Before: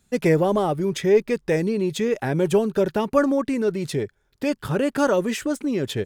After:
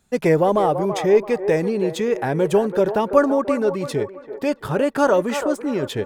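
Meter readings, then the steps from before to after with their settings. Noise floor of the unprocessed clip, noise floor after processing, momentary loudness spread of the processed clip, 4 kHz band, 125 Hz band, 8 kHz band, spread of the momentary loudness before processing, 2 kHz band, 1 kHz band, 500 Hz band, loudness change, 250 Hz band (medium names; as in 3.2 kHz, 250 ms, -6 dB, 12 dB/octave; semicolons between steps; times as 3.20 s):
-66 dBFS, -43 dBFS, 8 LU, -0.5 dB, -0.5 dB, -1.0 dB, 7 LU, +1.5 dB, +5.5 dB, +3.0 dB, +2.5 dB, +0.5 dB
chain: peaking EQ 820 Hz +6.5 dB 1.7 oct; feedback echo behind a band-pass 334 ms, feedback 36%, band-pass 770 Hz, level -8 dB; trim -1 dB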